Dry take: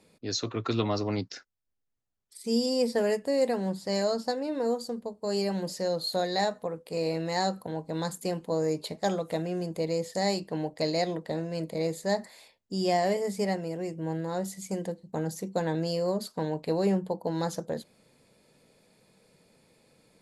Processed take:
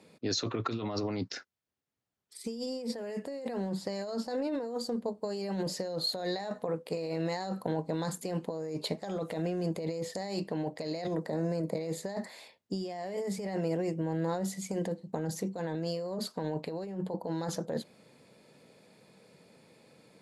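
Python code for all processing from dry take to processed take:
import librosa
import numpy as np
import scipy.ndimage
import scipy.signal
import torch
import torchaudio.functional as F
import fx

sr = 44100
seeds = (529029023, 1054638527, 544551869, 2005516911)

y = fx.chain(x, sr, fx.peak_eq(hz=3100.0, db=-14.0, octaves=0.8),
    fx.band_squash(depth_pct=70), at=(11.07, 11.75))
y = scipy.signal.sosfilt(scipy.signal.butter(2, 110.0, 'highpass', fs=sr, output='sos'), y)
y = fx.high_shelf(y, sr, hz=6300.0, db=-8.0)
y = fx.over_compress(y, sr, threshold_db=-34.0, ratio=-1.0)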